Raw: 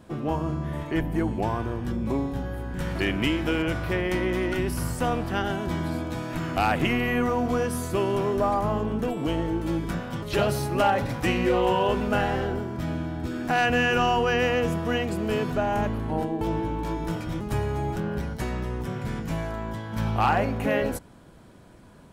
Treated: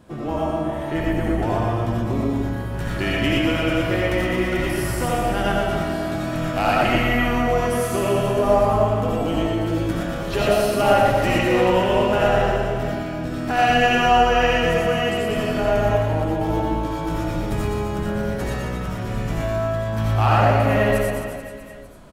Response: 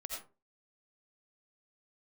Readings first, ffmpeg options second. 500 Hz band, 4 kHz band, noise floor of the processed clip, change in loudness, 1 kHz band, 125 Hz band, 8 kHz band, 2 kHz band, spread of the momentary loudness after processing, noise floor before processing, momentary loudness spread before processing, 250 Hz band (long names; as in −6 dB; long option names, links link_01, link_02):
+7.0 dB, +6.0 dB, −28 dBFS, +5.5 dB, +6.5 dB, +5.5 dB, +5.5 dB, +5.5 dB, 9 LU, −50 dBFS, 8 LU, +4.0 dB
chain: -filter_complex "[0:a]aecho=1:1:120|264|436.8|644.2|893:0.631|0.398|0.251|0.158|0.1[link_01];[1:a]atrim=start_sample=2205[link_02];[link_01][link_02]afir=irnorm=-1:irlink=0,volume=5dB"